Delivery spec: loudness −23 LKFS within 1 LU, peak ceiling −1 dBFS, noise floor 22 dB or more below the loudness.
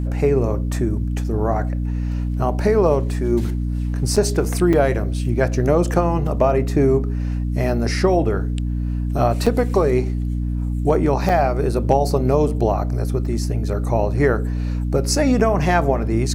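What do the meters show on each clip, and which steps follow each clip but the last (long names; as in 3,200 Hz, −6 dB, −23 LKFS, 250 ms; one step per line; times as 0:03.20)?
number of dropouts 4; longest dropout 5.4 ms; mains hum 60 Hz; hum harmonics up to 300 Hz; level of the hum −20 dBFS; integrated loudness −20.0 LKFS; sample peak −3.5 dBFS; target loudness −23.0 LKFS
→ repair the gap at 0:04.16/0:04.73/0:09.46/0:11.29, 5.4 ms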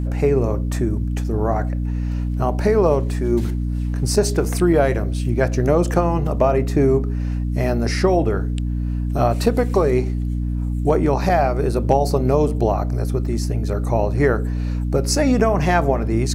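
number of dropouts 0; mains hum 60 Hz; hum harmonics up to 300 Hz; level of the hum −20 dBFS
→ hum removal 60 Hz, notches 5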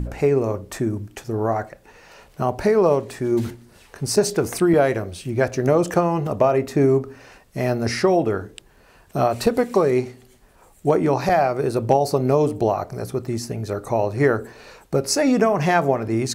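mains hum none found; integrated loudness −21.0 LKFS; sample peak −5.0 dBFS; target loudness −23.0 LKFS
→ level −2 dB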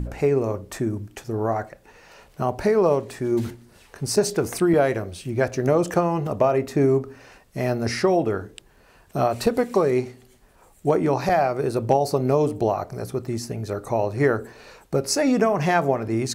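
integrated loudness −23.0 LKFS; sample peak −7.0 dBFS; background noise floor −55 dBFS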